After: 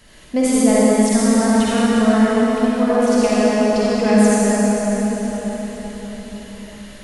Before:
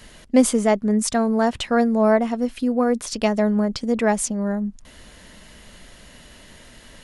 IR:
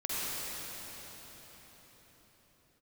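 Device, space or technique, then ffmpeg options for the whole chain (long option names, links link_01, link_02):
cathedral: -filter_complex "[1:a]atrim=start_sample=2205[link_01];[0:a][link_01]afir=irnorm=-1:irlink=0,asettb=1/sr,asplit=3[link_02][link_03][link_04];[link_02]atrim=end=1.024[link_05];[link_03]atrim=start=1.02:end=2.9,asetpts=PTS-STARTPTS,afade=type=in:duration=0.004:curve=qsin,afade=type=out:start_time=1.876:duration=0.004:curve=qsin,equalizer=frequency=590:width=1.5:gain=-6[link_06];[link_04]atrim=start=2.896[link_07];[link_05][link_06]acrossfade=duration=0.004:curve1=hsin:curve2=qsin[link_08];[link_08][link_07]acrossfade=duration=0.004:curve1=qsin:curve2=hsin,volume=-2dB"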